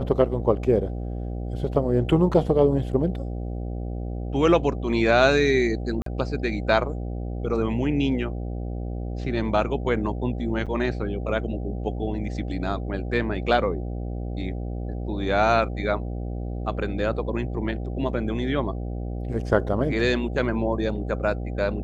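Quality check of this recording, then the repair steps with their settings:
buzz 60 Hz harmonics 13 -30 dBFS
6.02–6.06 s: dropout 43 ms
10.66–10.67 s: dropout 6.6 ms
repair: de-hum 60 Hz, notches 13; interpolate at 6.02 s, 43 ms; interpolate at 10.66 s, 6.6 ms

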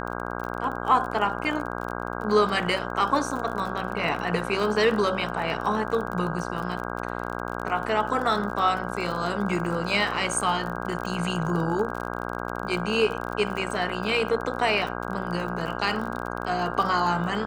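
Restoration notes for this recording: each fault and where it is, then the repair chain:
buzz 60 Hz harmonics 27 -32 dBFS
crackle 33 per s -31 dBFS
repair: de-click; de-hum 60 Hz, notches 27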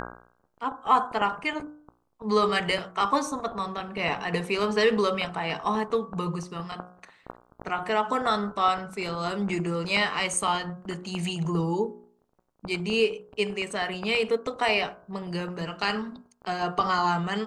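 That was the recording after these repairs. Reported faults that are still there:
nothing left

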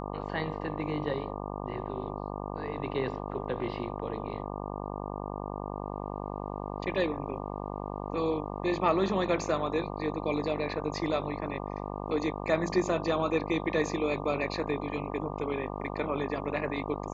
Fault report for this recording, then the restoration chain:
buzz 50 Hz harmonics 24 -37 dBFS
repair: de-hum 50 Hz, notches 24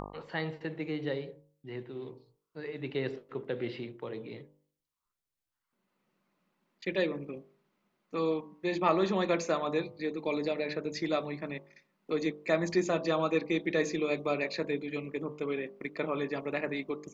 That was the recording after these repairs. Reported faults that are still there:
nothing left

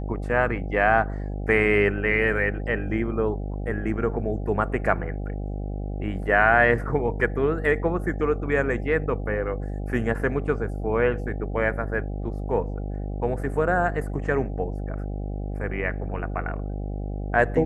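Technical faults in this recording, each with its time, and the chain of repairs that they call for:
buzz 50 Hz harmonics 16 -30 dBFS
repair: de-hum 50 Hz, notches 16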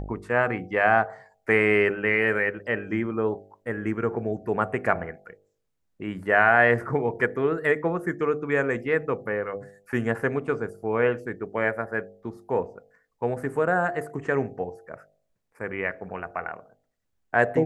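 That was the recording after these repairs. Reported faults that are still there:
nothing left

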